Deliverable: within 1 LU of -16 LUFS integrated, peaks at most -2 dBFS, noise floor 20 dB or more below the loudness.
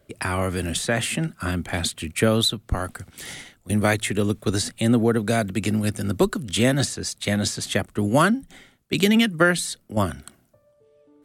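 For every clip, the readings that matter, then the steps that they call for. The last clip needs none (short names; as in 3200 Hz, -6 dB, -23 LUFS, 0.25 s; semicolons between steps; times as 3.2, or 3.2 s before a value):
loudness -23.0 LUFS; peak -5.0 dBFS; loudness target -16.0 LUFS
-> gain +7 dB; limiter -2 dBFS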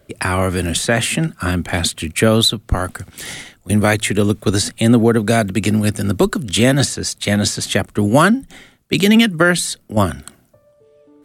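loudness -16.5 LUFS; peak -2.0 dBFS; noise floor -55 dBFS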